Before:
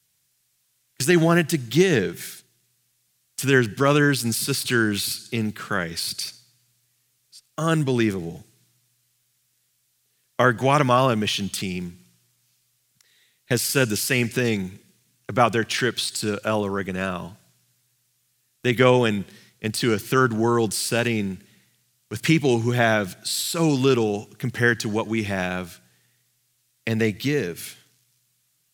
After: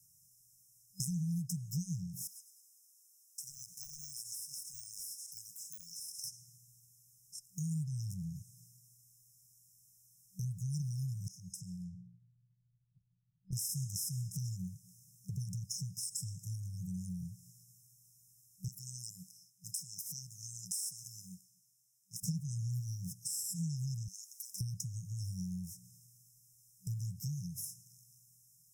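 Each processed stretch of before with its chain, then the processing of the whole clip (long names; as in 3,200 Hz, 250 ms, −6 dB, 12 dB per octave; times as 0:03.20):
0:02.27–0:06.24: high-pass filter 1,200 Hz + de-essing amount 95% + repeating echo 102 ms, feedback 50%, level −15 dB
0:11.28–0:13.53: low-pass that shuts in the quiet parts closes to 300 Hz, open at −24.5 dBFS + downward compressor 3 to 1, threshold −43 dBFS
0:18.68–0:22.23: high-pass filter 470 Hz + one half of a high-frequency compander decoder only
0:24.08–0:24.61: Butterworth high-pass 2,500 Hz 72 dB per octave + leveller curve on the samples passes 1
whole clip: brick-wall band-stop 190–5,100 Hz; downward compressor 2.5 to 1, threshold −47 dBFS; level +3.5 dB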